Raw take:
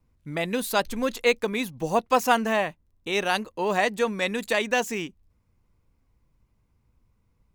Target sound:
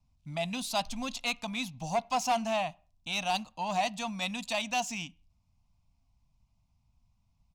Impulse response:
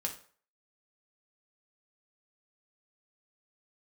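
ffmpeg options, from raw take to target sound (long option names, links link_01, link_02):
-filter_complex "[0:a]firequalizer=gain_entry='entry(140,0);entry(270,-5);entry(400,-30);entry(680,4);entry(1700,-14);entry(2500,2);entry(3600,4);entry(5400,7);entry(14000,-12)':delay=0.05:min_phase=1,asoftclip=type=tanh:threshold=-18dB,asplit=2[link_01][link_02];[1:a]atrim=start_sample=2205,afade=type=out:start_time=0.29:duration=0.01,atrim=end_sample=13230,lowpass=3300[link_03];[link_02][link_03]afir=irnorm=-1:irlink=0,volume=-16.5dB[link_04];[link_01][link_04]amix=inputs=2:normalize=0,volume=-4.5dB"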